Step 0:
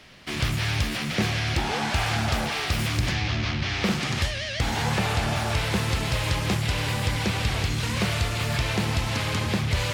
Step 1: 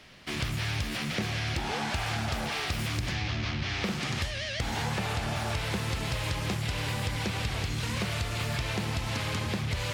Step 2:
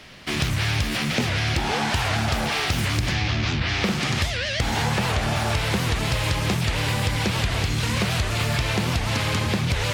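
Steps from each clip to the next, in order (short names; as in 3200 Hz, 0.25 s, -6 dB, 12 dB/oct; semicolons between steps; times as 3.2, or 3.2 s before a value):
compressor, threshold -24 dBFS, peak gain reduction 6 dB; gain -3 dB
record warp 78 rpm, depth 250 cents; gain +8 dB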